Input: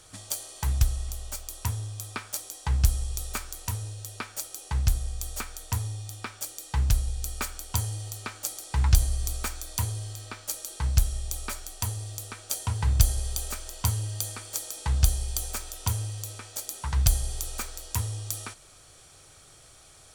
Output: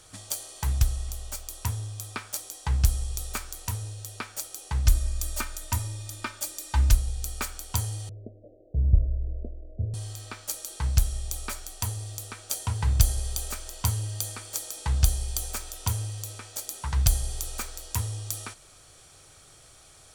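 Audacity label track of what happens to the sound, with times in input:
4.850000	6.950000	comb 3.3 ms, depth 92%
8.090000	9.940000	steep low-pass 660 Hz 96 dB/octave

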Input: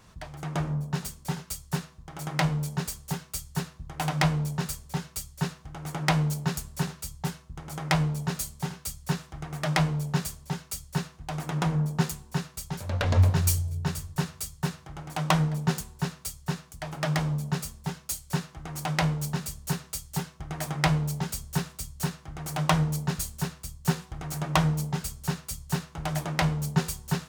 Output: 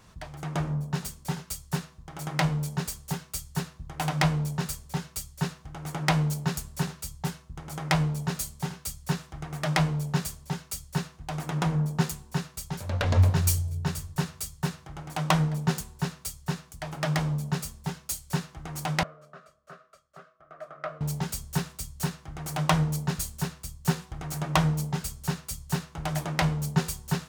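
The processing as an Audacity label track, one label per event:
19.030000	21.010000	two resonant band-passes 880 Hz, apart 0.99 oct

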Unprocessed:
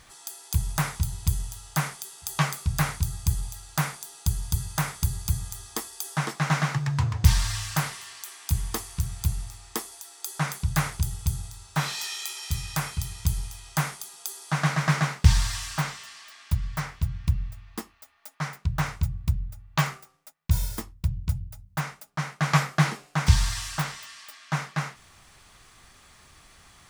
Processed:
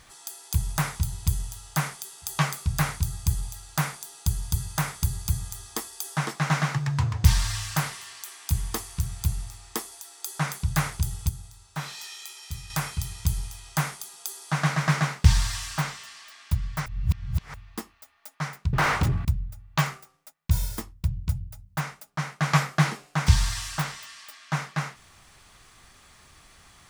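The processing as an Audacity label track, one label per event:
11.290000	12.700000	gain -7 dB
16.860000	17.540000	reverse
18.730000	19.250000	overdrive pedal drive 36 dB, tone 1.6 kHz, clips at -13 dBFS

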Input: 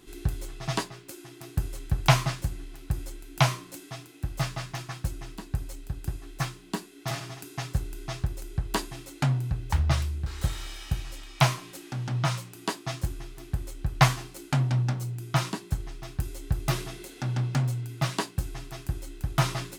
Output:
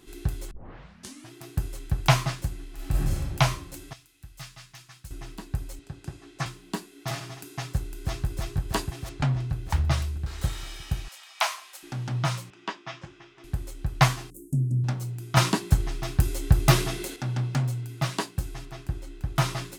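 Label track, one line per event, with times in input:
0.510000	0.510000	tape start 0.81 s
2.740000	3.180000	reverb throw, RT60 1.7 s, DRR -7.5 dB
3.930000	5.110000	amplifier tone stack bass-middle-treble 5-5-5
5.790000	6.460000	band-pass 120–7700 Hz
7.720000	8.260000	echo throw 320 ms, feedback 75%, level -2.5 dB
9.090000	9.500000	distance through air 69 m
11.080000	11.830000	high-pass 700 Hz 24 dB/octave
12.500000	13.440000	cabinet simulation 250–4900 Hz, peaks and dips at 280 Hz -7 dB, 450 Hz -8 dB, 720 Hz -5 dB, 4.3 kHz -10 dB
14.300000	14.840000	inverse Chebyshev band-stop 1–3.6 kHz, stop band 60 dB
15.370000	17.160000	gain +8.5 dB
18.650000	19.360000	low-pass 3.8 kHz 6 dB/octave

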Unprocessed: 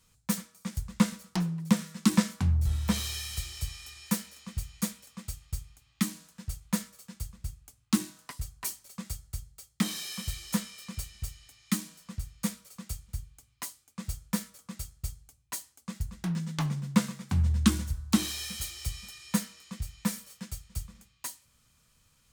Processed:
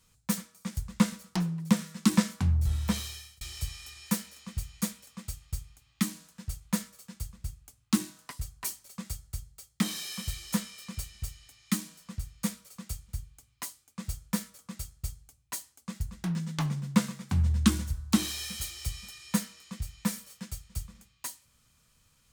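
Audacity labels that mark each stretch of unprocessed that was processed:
2.830000	3.410000	fade out

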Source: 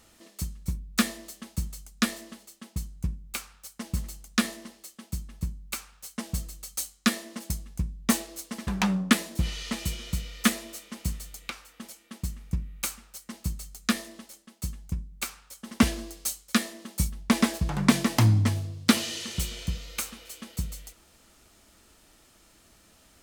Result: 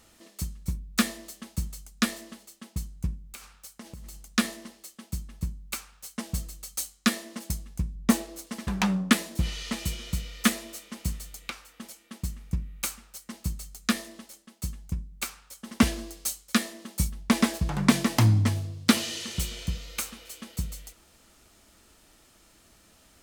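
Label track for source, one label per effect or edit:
3.260000	4.280000	compression 12:1, threshold -38 dBFS
7.950000	8.470000	tilt shelf lows +3.5 dB, about 1.2 kHz

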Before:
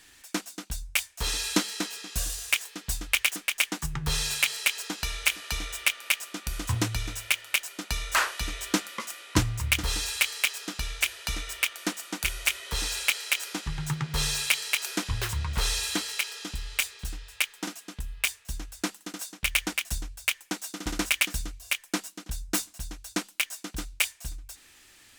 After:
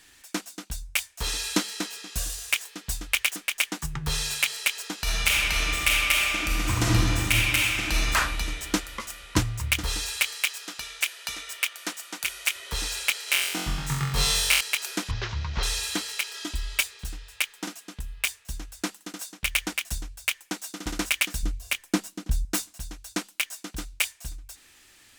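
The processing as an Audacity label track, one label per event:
5.020000	8.100000	reverb throw, RT60 2.6 s, DRR -6 dB
10.350000	12.560000	high-pass 620 Hz 6 dB/octave
13.250000	14.610000	flutter echo walls apart 3.8 m, dies away in 0.79 s
15.110000	15.630000	CVSD coder 32 kbps
16.340000	16.820000	comb 3.1 ms, depth 88%
21.430000	22.450000	bass shelf 390 Hz +10.5 dB

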